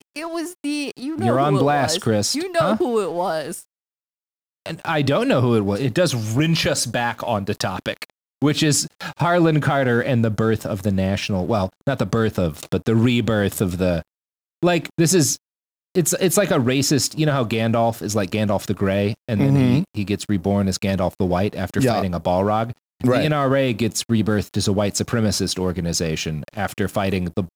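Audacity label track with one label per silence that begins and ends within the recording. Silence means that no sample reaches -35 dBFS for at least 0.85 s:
3.620000	4.660000	silence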